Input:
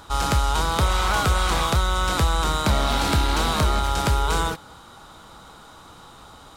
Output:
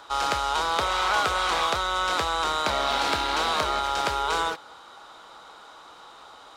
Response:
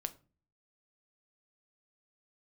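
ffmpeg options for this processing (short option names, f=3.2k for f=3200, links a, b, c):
-filter_complex "[0:a]acrossover=split=360 6300:gain=0.1 1 0.251[a][b][c];[a][b][c]amix=inputs=3:normalize=0"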